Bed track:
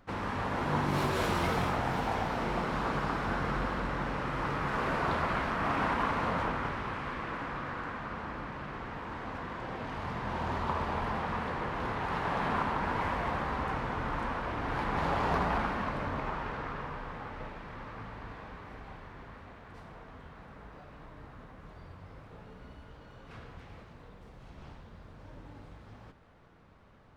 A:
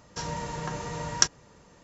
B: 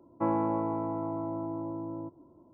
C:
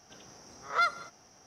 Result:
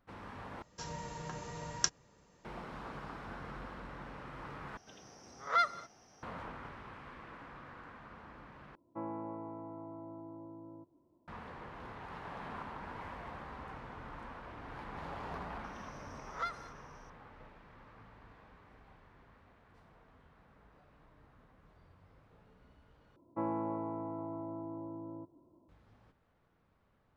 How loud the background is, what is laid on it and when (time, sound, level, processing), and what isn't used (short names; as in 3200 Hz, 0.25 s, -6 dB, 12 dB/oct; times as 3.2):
bed track -13.5 dB
0.62 replace with A -9.5 dB
4.77 replace with C -2 dB + high shelf 7100 Hz -10 dB
8.75 replace with B -13 dB
15.64 add C -9 dB + ending taper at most 180 dB/s
23.16 replace with B -7.5 dB